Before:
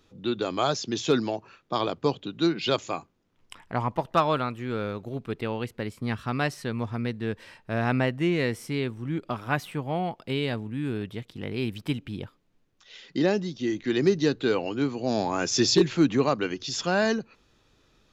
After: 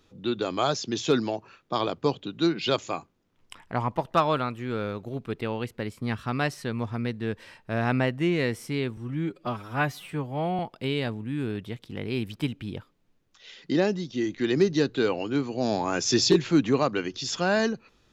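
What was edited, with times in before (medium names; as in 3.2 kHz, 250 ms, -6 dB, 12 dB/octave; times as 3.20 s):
8.97–10.05 s: stretch 1.5×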